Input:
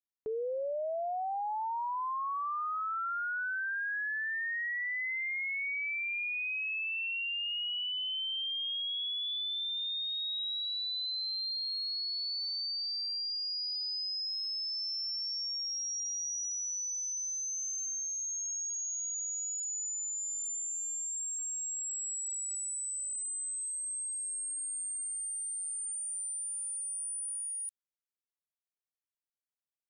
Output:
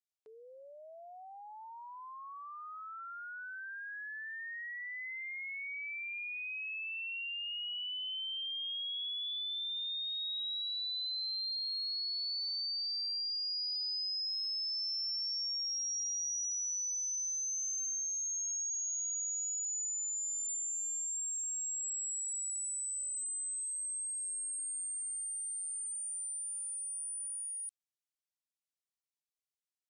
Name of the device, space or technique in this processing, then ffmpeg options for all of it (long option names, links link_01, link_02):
piezo pickup straight into a mixer: -af "lowpass=6700,aderivative,volume=3.5dB"